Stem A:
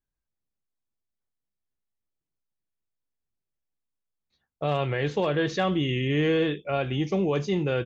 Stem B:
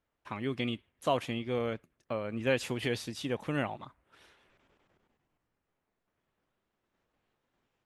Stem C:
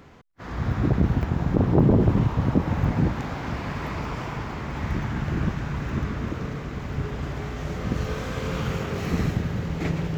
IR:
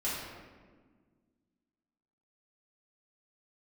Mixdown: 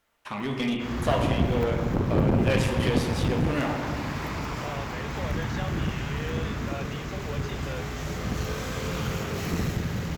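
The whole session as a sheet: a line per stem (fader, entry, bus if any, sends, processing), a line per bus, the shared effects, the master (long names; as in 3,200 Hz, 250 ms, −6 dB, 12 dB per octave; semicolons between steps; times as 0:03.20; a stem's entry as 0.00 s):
−10.0 dB, 0.00 s, no send, inverse Chebyshev high-pass filter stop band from 220 Hz
+2.0 dB, 0.00 s, send −4.5 dB, no processing
−2.0 dB, 0.40 s, no send, high-shelf EQ 5,500 Hz +10 dB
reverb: on, RT60 1.5 s, pre-delay 4 ms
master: asymmetric clip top −25 dBFS; one half of a high-frequency compander encoder only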